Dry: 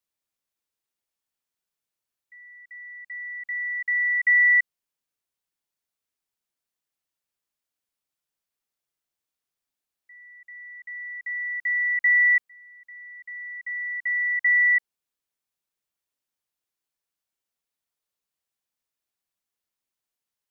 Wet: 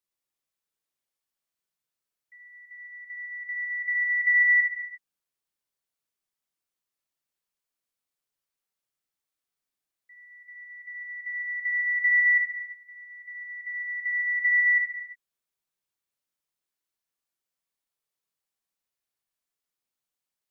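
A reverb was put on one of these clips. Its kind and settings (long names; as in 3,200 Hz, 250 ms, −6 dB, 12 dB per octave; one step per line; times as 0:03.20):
reverb whose tail is shaped and stops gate 380 ms falling, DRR −0.5 dB
level −4.5 dB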